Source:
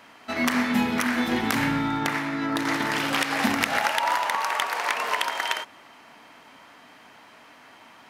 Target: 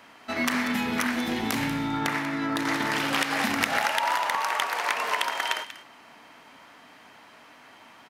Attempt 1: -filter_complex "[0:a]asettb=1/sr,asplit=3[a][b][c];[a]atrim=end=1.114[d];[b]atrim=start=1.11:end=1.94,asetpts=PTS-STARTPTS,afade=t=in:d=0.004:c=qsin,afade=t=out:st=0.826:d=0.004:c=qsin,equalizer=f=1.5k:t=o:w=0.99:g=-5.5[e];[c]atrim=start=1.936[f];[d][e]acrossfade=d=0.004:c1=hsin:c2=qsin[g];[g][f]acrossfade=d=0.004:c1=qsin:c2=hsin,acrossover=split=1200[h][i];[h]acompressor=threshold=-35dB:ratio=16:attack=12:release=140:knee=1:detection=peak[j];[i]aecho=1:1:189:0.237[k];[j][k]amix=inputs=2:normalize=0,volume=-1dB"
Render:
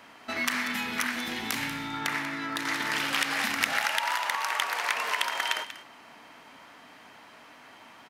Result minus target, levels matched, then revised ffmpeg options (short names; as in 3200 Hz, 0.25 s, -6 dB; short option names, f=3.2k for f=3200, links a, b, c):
compressor: peak gain reduction +9.5 dB
-filter_complex "[0:a]asettb=1/sr,asplit=3[a][b][c];[a]atrim=end=1.114[d];[b]atrim=start=1.11:end=1.94,asetpts=PTS-STARTPTS,afade=t=in:d=0.004:c=qsin,afade=t=out:st=0.826:d=0.004:c=qsin,equalizer=f=1.5k:t=o:w=0.99:g=-5.5[e];[c]atrim=start=1.936[f];[d][e]acrossfade=d=0.004:c1=hsin:c2=qsin[g];[g][f]acrossfade=d=0.004:c1=qsin:c2=hsin,acrossover=split=1200[h][i];[h]acompressor=threshold=-25dB:ratio=16:attack=12:release=140:knee=1:detection=peak[j];[i]aecho=1:1:189:0.237[k];[j][k]amix=inputs=2:normalize=0,volume=-1dB"